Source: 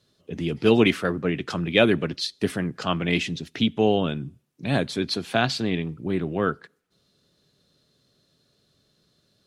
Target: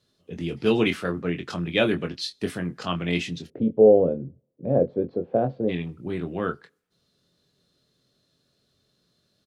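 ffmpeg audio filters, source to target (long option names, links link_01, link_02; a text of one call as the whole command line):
ffmpeg -i in.wav -filter_complex "[0:a]asplit=3[link_01][link_02][link_03];[link_01]afade=type=out:start_time=3.46:duration=0.02[link_04];[link_02]lowpass=frequency=520:width_type=q:width=6.3,afade=type=in:start_time=3.46:duration=0.02,afade=type=out:start_time=5.68:duration=0.02[link_05];[link_03]afade=type=in:start_time=5.68:duration=0.02[link_06];[link_04][link_05][link_06]amix=inputs=3:normalize=0,asplit=2[link_07][link_08];[link_08]adelay=23,volume=-7dB[link_09];[link_07][link_09]amix=inputs=2:normalize=0,volume=-4dB" out.wav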